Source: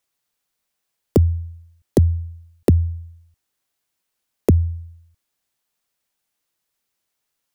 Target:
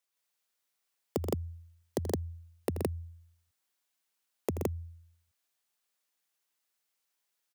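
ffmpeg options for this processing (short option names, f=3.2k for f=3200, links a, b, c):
-filter_complex "[0:a]highpass=100,lowshelf=f=390:g=-9,acompressor=threshold=-20dB:ratio=6,asplit=2[a][b];[b]aecho=0:1:81.63|125.4|166.2:0.282|0.501|1[c];[a][c]amix=inputs=2:normalize=0,volume=-7.5dB"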